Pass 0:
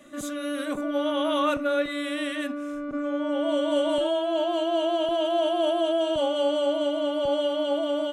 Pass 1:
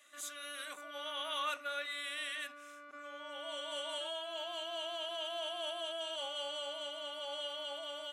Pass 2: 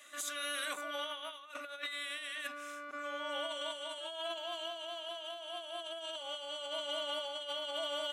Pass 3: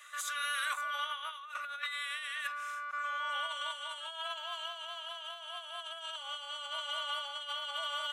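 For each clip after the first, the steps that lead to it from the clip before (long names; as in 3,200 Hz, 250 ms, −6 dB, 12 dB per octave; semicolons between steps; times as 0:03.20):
Bessel high-pass filter 1,800 Hz, order 2; level −4 dB
compressor whose output falls as the input rises −44 dBFS, ratio −0.5; level +4 dB
high-pass with resonance 1,200 Hz, resonance Q 2.4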